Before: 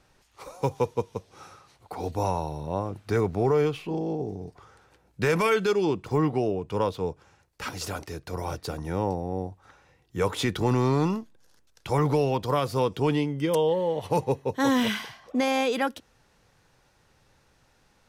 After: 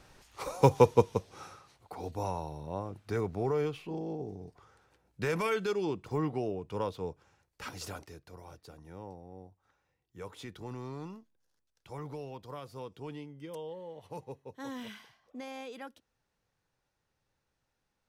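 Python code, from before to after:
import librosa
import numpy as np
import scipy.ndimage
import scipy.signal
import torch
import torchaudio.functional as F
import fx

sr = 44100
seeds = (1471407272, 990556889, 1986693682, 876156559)

y = fx.gain(x, sr, db=fx.line((1.03, 4.5), (2.02, -8.0), (7.89, -8.0), (8.43, -18.5)))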